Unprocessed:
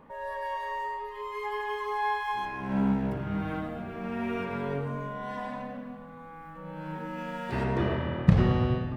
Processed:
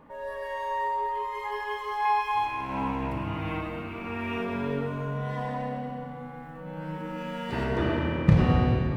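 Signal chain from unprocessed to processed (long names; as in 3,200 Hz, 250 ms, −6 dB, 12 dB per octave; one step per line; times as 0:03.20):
0:02.05–0:04.38: thirty-one-band graphic EQ 100 Hz +6 dB, 200 Hz −11 dB, 400 Hz −7 dB, 630 Hz −3 dB, 1,000 Hz +8 dB, 1,600 Hz −4 dB, 2,500 Hz +11 dB
feedback delay network reverb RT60 2.9 s, high-frequency decay 0.75×, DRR 1 dB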